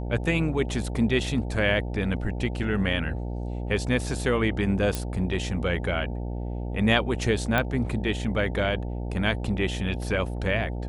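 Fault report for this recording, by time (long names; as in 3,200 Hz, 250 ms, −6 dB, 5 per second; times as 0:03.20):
mains buzz 60 Hz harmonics 15 −31 dBFS
0:04.95: click
0:07.58: click −11 dBFS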